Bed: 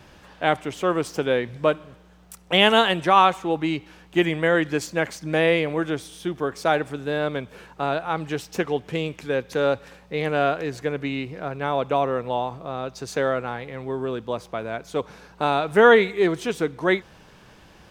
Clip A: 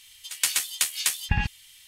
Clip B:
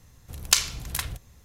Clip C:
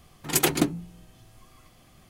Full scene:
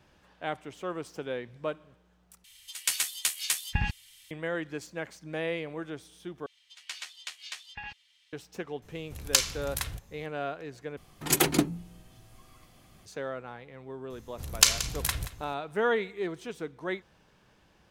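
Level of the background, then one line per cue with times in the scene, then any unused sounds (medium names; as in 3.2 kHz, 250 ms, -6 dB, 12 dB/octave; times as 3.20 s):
bed -13 dB
2.44 s: replace with A -4 dB
6.46 s: replace with A -11 dB + three-band isolator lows -18 dB, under 430 Hz, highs -23 dB, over 5.9 kHz
8.82 s: add B -3.5 dB
10.97 s: replace with C -1.5 dB
14.10 s: add B + delay 178 ms -14.5 dB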